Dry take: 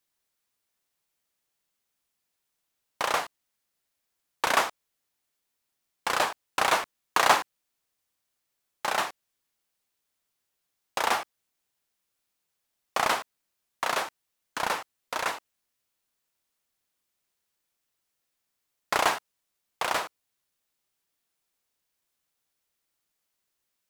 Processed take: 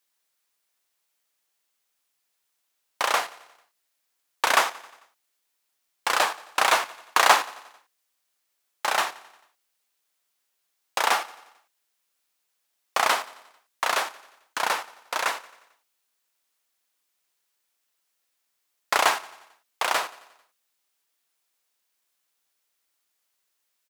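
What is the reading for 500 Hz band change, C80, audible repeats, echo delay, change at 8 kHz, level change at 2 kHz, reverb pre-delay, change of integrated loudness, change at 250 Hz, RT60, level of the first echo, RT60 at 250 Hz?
+1.5 dB, no reverb, 4, 89 ms, +4.5 dB, +4.0 dB, no reverb, +3.5 dB, -2.5 dB, no reverb, -20.0 dB, no reverb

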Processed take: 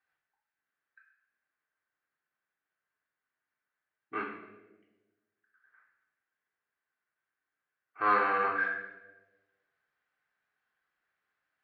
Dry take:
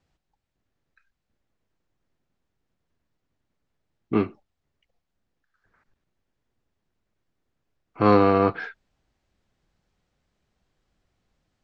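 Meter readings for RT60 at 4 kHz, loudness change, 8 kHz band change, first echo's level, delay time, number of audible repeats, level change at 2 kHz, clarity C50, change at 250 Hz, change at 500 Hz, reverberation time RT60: 0.80 s, -8.5 dB, no reading, no echo, no echo, no echo, +4.0 dB, 4.5 dB, -21.0 dB, -15.0 dB, 1.2 s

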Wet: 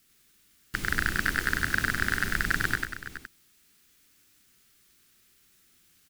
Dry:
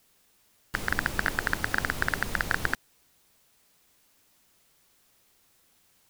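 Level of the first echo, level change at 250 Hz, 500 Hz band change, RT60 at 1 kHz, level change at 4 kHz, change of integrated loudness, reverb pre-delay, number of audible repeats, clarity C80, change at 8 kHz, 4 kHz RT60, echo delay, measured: -3.0 dB, +2.0 dB, -3.5 dB, no reverb, +2.0 dB, +1.5 dB, no reverb, 4, no reverb, +2.0 dB, no reverb, 98 ms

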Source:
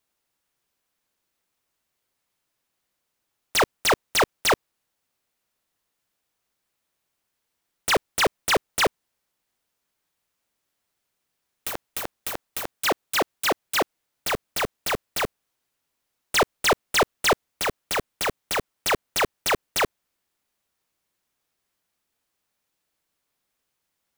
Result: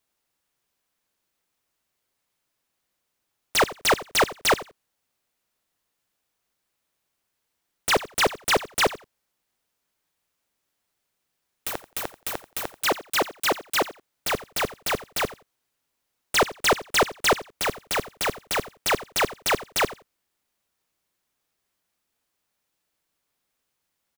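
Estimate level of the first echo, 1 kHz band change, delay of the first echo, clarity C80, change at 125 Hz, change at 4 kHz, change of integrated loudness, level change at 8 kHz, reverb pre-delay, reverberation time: -17.0 dB, 0.0 dB, 87 ms, no reverb, 0.0 dB, 0.0 dB, 0.0 dB, 0.0 dB, no reverb, no reverb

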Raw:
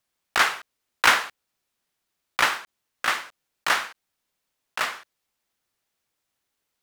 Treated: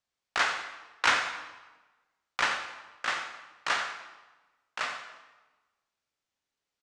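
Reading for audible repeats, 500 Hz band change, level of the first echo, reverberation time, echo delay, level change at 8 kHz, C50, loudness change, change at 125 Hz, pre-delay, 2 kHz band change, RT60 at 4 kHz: 1, -5.5 dB, -12.0 dB, 1.2 s, 88 ms, -8.0 dB, 6.5 dB, -6.5 dB, -6.0 dB, 6 ms, -6.0 dB, 0.95 s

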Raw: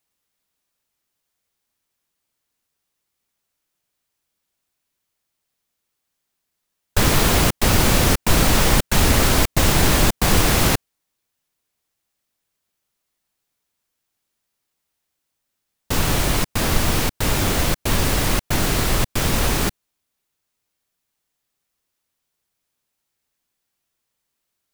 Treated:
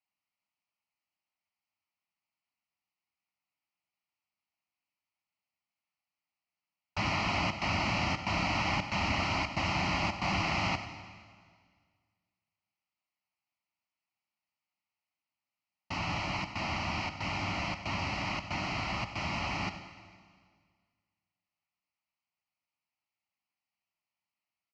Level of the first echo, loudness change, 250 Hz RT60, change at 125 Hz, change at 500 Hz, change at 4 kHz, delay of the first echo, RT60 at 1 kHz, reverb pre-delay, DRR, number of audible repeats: -14.5 dB, -13.5 dB, 1.9 s, -15.5 dB, -16.0 dB, -13.5 dB, 95 ms, 1.8 s, 38 ms, 8.5 dB, 1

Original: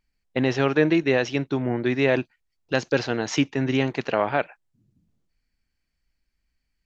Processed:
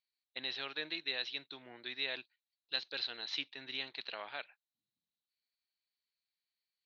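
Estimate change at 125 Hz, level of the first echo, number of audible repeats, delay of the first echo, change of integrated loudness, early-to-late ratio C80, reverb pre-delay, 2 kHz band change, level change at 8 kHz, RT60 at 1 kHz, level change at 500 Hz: -37.5 dB, no echo, no echo, no echo, -16.0 dB, no reverb, no reverb, -14.0 dB, no reading, no reverb, -27.0 dB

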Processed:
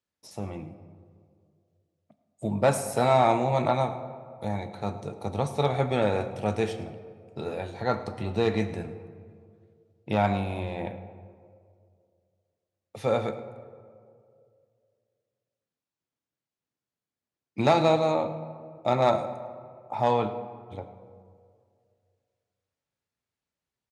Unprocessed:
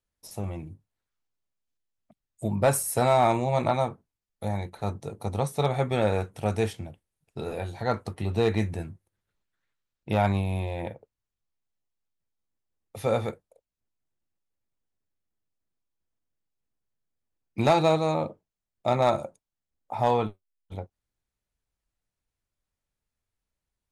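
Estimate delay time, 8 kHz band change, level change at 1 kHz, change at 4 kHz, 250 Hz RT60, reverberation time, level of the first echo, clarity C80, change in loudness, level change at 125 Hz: 106 ms, -5.5 dB, +0.5 dB, 0.0 dB, 2.2 s, 2.3 s, -18.0 dB, 12.0 dB, -0.5 dB, -2.0 dB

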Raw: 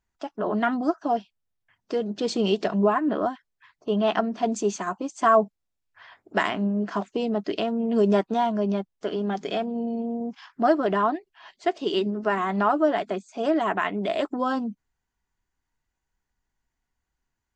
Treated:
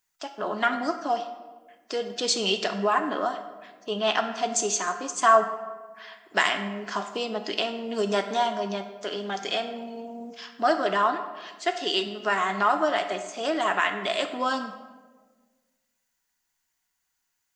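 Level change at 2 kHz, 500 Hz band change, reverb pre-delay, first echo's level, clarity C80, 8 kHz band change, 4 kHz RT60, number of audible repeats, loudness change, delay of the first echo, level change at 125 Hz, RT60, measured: +4.0 dB, -3.0 dB, 4 ms, no echo, 11.0 dB, +11.5 dB, 0.80 s, no echo, -1.0 dB, no echo, no reading, 1.4 s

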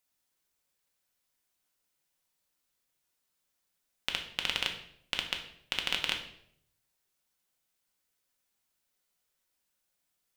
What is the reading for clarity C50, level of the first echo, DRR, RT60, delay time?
8.5 dB, no echo, 2.5 dB, 0.65 s, no echo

